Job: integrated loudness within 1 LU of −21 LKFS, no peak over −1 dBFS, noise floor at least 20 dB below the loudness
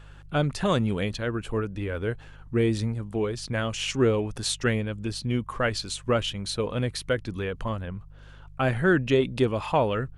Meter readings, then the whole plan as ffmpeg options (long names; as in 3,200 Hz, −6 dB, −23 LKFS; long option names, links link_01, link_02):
mains hum 50 Hz; hum harmonics up to 150 Hz; level of the hum −46 dBFS; integrated loudness −27.0 LKFS; sample peak −10.5 dBFS; target loudness −21.0 LKFS
→ -af "bandreject=frequency=50:width_type=h:width=4,bandreject=frequency=100:width_type=h:width=4,bandreject=frequency=150:width_type=h:width=4"
-af "volume=6dB"